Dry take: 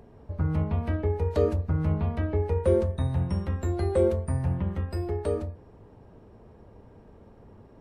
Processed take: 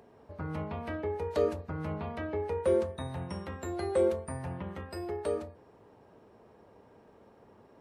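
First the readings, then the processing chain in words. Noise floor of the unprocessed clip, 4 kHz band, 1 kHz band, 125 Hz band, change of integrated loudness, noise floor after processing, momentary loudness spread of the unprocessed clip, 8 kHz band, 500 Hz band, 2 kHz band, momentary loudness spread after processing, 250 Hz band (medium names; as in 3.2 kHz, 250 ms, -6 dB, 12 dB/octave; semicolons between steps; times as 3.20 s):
-53 dBFS, 0.0 dB, -1.0 dB, -13.5 dB, -6.5 dB, -59 dBFS, 7 LU, 0.0 dB, -3.0 dB, -0.5 dB, 11 LU, -6.5 dB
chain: high-pass 480 Hz 6 dB/octave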